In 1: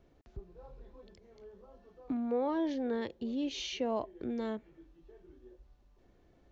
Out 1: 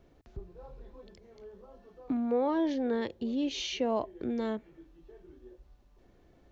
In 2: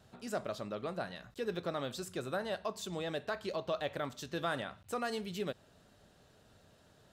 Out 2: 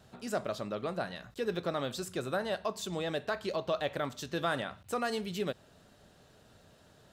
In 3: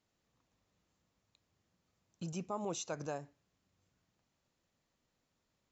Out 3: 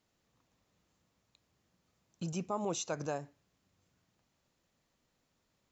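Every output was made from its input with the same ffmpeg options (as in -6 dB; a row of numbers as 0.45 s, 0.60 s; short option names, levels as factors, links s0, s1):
-af "bandreject=f=48.69:t=h:w=4,bandreject=f=97.38:t=h:w=4,volume=1.5"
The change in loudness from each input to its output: +3.5 LU, +3.5 LU, +3.5 LU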